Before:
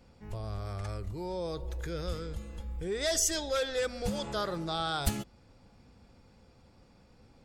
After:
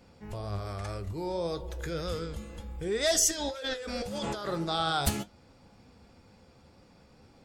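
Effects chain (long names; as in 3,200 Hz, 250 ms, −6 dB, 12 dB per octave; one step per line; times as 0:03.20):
low-shelf EQ 73 Hz −8.5 dB
0:03.31–0:04.49: compressor whose output falls as the input rises −39 dBFS, ratio −1
flanger 1.9 Hz, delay 9.5 ms, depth 5.4 ms, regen +68%
level +8 dB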